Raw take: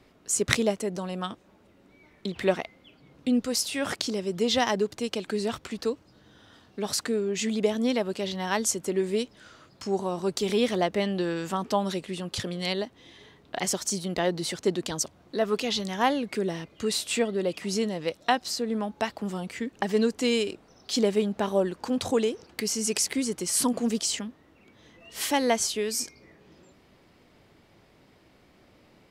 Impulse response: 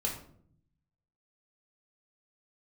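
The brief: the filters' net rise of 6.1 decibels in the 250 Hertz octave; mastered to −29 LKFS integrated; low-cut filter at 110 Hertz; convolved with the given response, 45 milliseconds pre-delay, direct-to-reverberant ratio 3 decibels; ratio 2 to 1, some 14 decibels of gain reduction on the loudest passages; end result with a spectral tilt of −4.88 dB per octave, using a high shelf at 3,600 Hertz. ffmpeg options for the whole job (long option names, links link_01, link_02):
-filter_complex "[0:a]highpass=110,equalizer=frequency=250:width_type=o:gain=7.5,highshelf=frequency=3600:gain=-5,acompressor=threshold=-41dB:ratio=2,asplit=2[link_01][link_02];[1:a]atrim=start_sample=2205,adelay=45[link_03];[link_02][link_03]afir=irnorm=-1:irlink=0,volume=-7dB[link_04];[link_01][link_04]amix=inputs=2:normalize=0,volume=5dB"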